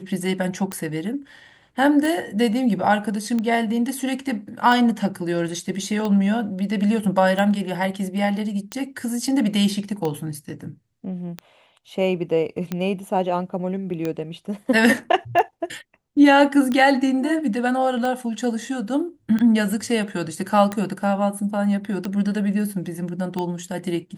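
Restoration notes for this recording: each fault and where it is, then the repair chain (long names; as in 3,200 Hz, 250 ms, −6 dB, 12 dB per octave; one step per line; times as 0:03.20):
scratch tick 45 rpm −13 dBFS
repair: click removal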